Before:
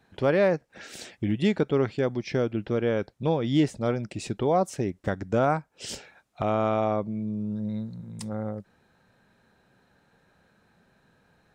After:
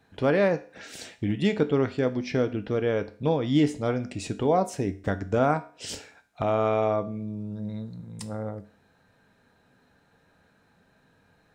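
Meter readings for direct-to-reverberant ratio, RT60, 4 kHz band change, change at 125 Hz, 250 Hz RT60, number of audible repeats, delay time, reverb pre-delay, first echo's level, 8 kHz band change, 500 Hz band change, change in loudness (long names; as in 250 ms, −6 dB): 9.0 dB, 0.45 s, +0.5 dB, 0.0 dB, 0.45 s, no echo audible, no echo audible, 4 ms, no echo audible, +0.5 dB, +0.5 dB, +0.5 dB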